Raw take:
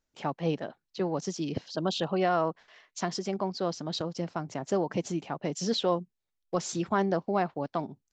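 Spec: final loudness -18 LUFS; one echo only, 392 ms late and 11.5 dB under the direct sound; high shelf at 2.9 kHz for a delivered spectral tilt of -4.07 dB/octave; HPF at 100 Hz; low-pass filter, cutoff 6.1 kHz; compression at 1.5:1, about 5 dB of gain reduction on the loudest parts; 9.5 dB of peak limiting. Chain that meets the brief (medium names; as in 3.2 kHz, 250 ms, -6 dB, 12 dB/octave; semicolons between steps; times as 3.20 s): high-pass 100 Hz; low-pass 6.1 kHz; treble shelf 2.9 kHz +8.5 dB; compression 1.5:1, threshold -35 dBFS; peak limiter -27 dBFS; delay 392 ms -11.5 dB; trim +19.5 dB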